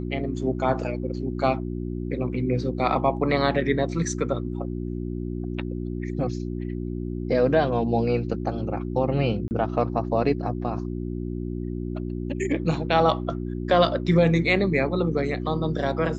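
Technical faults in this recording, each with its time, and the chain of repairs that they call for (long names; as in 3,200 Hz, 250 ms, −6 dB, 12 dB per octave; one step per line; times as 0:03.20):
mains hum 60 Hz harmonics 6 −30 dBFS
0:09.48–0:09.51: drop-out 29 ms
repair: hum removal 60 Hz, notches 6
repair the gap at 0:09.48, 29 ms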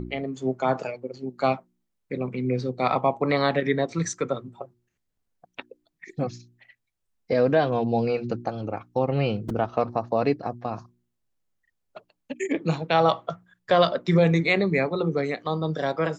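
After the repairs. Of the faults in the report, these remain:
none of them is left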